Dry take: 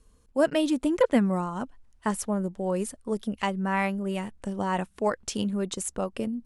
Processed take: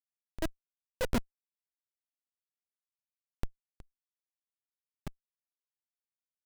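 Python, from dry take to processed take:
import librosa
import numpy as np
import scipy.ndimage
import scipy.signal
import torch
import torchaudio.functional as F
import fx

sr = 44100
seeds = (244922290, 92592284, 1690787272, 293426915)

p1 = scipy.ndimage.median_filter(x, 9, mode='constant')
p2 = fx.level_steps(p1, sr, step_db=19)
p3 = p1 + (p2 * 10.0 ** (1.0 / 20.0))
p4 = fx.high_shelf(p3, sr, hz=4400.0, db=2.5)
p5 = fx.schmitt(p4, sr, flips_db=-14.5)
p6 = p5 * np.abs(np.cos(np.pi * 1.7 * np.arange(len(p5)) / sr))
y = p6 * 10.0 ** (-1.0 / 20.0)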